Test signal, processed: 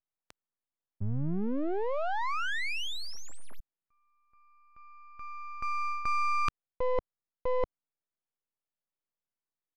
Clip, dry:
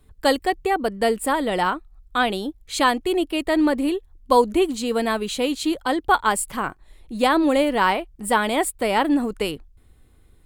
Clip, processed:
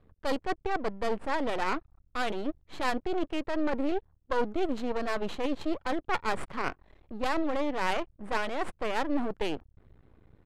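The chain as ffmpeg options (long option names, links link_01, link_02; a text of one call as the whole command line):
ffmpeg -i in.wav -af "highpass=67,areverse,acompressor=threshold=-29dB:ratio=4,areverse,aeval=exprs='max(val(0),0)':channel_layout=same,adynamicsmooth=sensitivity=4.5:basefreq=1900,aresample=32000,aresample=44100,volume=5dB" out.wav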